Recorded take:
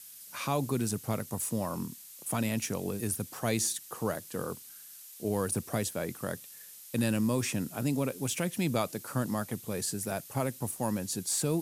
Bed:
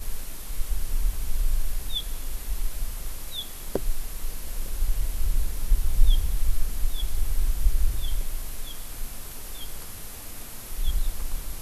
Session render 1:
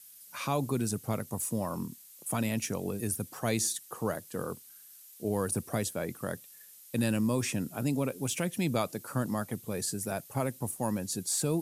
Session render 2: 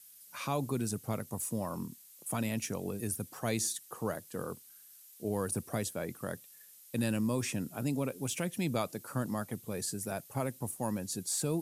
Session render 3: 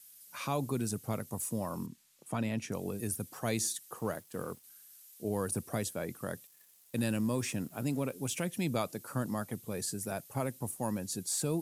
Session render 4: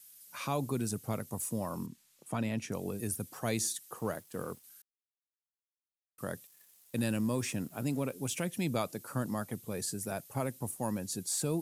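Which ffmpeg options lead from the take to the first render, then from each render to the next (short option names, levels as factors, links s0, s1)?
-af "afftdn=nr=6:nf=-50"
-af "volume=0.708"
-filter_complex "[0:a]asettb=1/sr,asplit=3[s0][s1][s2];[s0]atrim=end=1.864[s3];[s1]atrim=start=1.86:end=2.72,asetpts=PTS-STARTPTS,afade=t=in:d=0.004:c=qsin,afade=t=out:st=0.856:d=0.004:c=qsin,aemphasis=mode=reproduction:type=50fm[s4];[s2]atrim=start=2.716[s5];[s3][s4]acrossfade=d=0.004:c1=hsin:c2=qsin[s6];[s6][s5]acrossfade=d=0.004:c1=qsin:c2=hsin,asettb=1/sr,asplit=3[s7][s8][s9];[s7]atrim=end=3.994[s10];[s8]atrim=start=3.99:end=4.64,asetpts=PTS-STARTPTS,afade=t=in:d=0.004:c=qsin,afade=t=out:st=0.646:d=0.004:c=qsin,aeval=exprs='sgn(val(0))*max(abs(val(0))-0.00106,0)':c=same[s11];[s9]atrim=start=4.636[s12];[s10][s11]acrossfade=d=0.004:c1=hsin:c2=qsin[s13];[s13][s12]acrossfade=d=0.004:c1=qsin:c2=hsin,asettb=1/sr,asplit=3[s14][s15][s16];[s14]atrim=end=6.474[s17];[s15]atrim=start=6.47:end=8.13,asetpts=PTS-STARTPTS,afade=t=in:d=0.004:c=qsin,afade=t=out:st=1.656:d=0.004:c=qsin,aeval=exprs='sgn(val(0))*max(abs(val(0))-0.00119,0)':c=same[s18];[s16]atrim=start=8.126[s19];[s17][s18]acrossfade=d=0.004:c1=hsin:c2=qsin[s20];[s20][s19]acrossfade=d=0.004:c1=qsin:c2=hsin"
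-filter_complex "[0:a]asplit=3[s0][s1][s2];[s0]atrim=end=4.82,asetpts=PTS-STARTPTS,afade=t=out:st=4.816:d=0.004:c=hsin[s3];[s1]atrim=start=4.82:end=6.18,asetpts=PTS-STARTPTS,volume=0[s4];[s2]atrim=start=6.18,asetpts=PTS-STARTPTS,afade=t=in:d=0.004:c=hsin[s5];[s3][s4][s5]concat=n=3:v=0:a=1"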